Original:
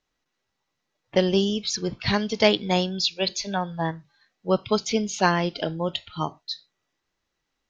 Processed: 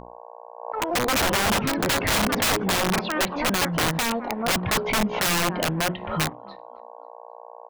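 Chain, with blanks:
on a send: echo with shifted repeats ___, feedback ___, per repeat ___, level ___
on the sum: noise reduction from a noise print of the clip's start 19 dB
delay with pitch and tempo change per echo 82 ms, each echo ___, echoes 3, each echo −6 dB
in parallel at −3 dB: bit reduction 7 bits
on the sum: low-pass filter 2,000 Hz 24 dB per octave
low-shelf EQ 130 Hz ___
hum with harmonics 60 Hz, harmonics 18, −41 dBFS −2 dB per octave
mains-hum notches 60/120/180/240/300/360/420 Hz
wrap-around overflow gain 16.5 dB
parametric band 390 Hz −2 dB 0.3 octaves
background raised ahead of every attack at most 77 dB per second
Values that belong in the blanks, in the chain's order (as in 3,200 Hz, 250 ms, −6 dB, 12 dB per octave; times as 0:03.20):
268 ms, 40%, +42 Hz, −23 dB, +5 semitones, +3 dB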